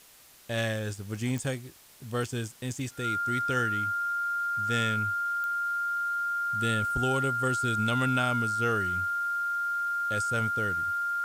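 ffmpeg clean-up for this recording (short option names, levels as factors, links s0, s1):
-af "adeclick=t=4,bandreject=f=1400:w=30,afwtdn=0.002"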